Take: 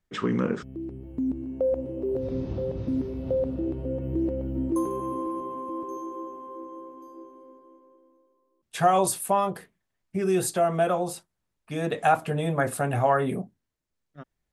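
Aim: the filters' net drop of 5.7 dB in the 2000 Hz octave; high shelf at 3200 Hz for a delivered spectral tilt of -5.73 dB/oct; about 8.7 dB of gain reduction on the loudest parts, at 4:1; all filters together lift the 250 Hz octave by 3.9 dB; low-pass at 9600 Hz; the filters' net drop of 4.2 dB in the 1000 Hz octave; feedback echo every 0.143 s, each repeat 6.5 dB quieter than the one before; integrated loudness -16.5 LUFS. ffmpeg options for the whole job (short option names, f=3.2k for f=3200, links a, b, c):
-af "lowpass=9.6k,equalizer=f=250:t=o:g=5.5,equalizer=f=1k:t=o:g=-6,equalizer=f=2k:t=o:g=-8,highshelf=f=3.2k:g=8,acompressor=threshold=-29dB:ratio=4,aecho=1:1:143|286|429|572|715|858:0.473|0.222|0.105|0.0491|0.0231|0.0109,volume=15.5dB"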